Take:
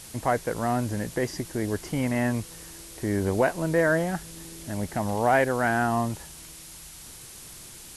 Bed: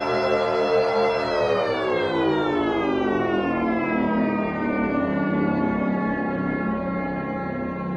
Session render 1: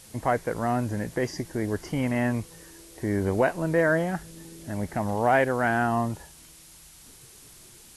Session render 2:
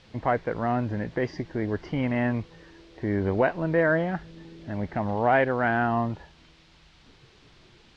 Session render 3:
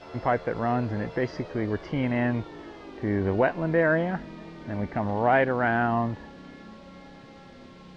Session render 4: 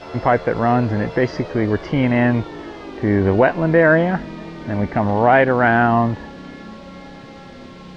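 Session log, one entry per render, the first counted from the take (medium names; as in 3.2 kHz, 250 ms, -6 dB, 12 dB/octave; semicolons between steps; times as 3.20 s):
noise print and reduce 6 dB
low-pass 4.1 kHz 24 dB/octave
add bed -21 dB
trim +9.5 dB; peak limiter -3 dBFS, peak gain reduction 2 dB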